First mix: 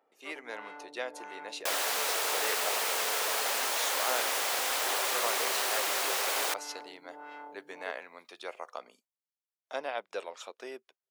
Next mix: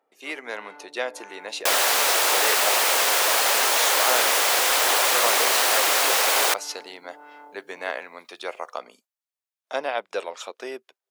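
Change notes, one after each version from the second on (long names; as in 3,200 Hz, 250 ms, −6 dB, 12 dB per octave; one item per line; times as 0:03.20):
speech +8.5 dB
second sound +10.5 dB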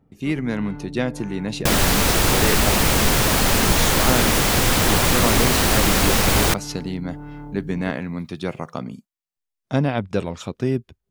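master: remove high-pass filter 510 Hz 24 dB per octave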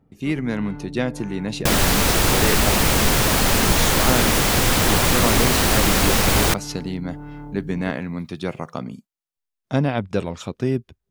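nothing changed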